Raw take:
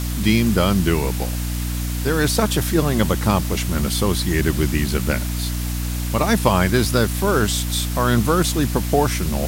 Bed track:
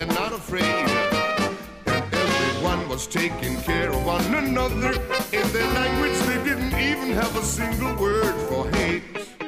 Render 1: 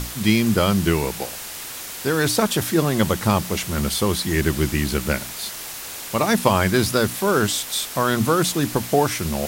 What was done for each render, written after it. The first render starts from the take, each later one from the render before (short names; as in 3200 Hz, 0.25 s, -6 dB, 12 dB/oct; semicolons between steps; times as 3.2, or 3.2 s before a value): notches 60/120/180/240/300 Hz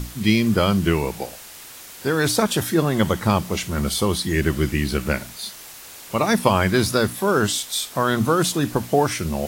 noise print and reduce 7 dB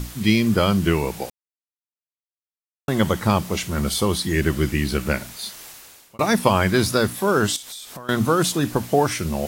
1.3–2.88 mute; 5.66–6.19 fade out; 7.56–8.09 compressor 16:1, threshold -32 dBFS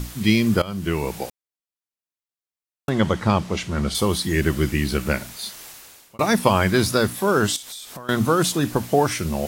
0.62–1.14 fade in, from -18.5 dB; 2.89–3.95 air absorption 70 m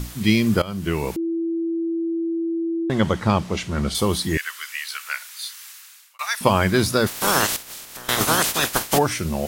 1.16–2.9 bleep 332 Hz -21 dBFS; 4.37–6.41 HPF 1200 Hz 24 dB/oct; 7.06–8.97 spectral limiter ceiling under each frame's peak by 29 dB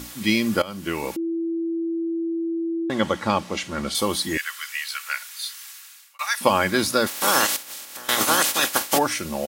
HPF 340 Hz 6 dB/oct; comb 3.6 ms, depth 36%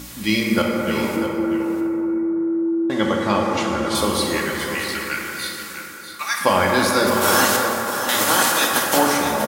on a send: echo 0.644 s -10 dB; on the sum: plate-style reverb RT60 4 s, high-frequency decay 0.3×, DRR -1.5 dB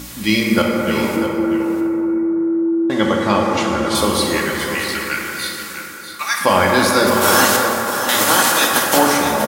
gain +3.5 dB; limiter -1 dBFS, peak gain reduction 2 dB